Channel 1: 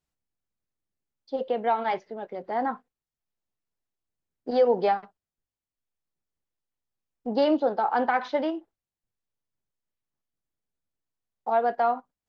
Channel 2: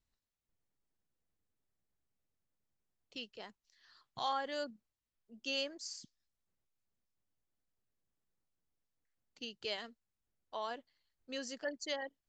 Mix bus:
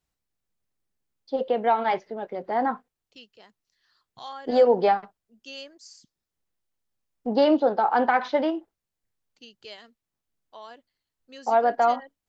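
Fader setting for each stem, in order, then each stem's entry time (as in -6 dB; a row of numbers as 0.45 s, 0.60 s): +3.0 dB, -3.0 dB; 0.00 s, 0.00 s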